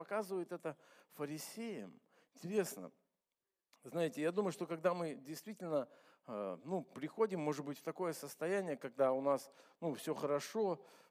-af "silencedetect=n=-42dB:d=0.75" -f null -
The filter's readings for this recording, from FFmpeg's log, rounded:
silence_start: 2.87
silence_end: 3.86 | silence_duration: 0.99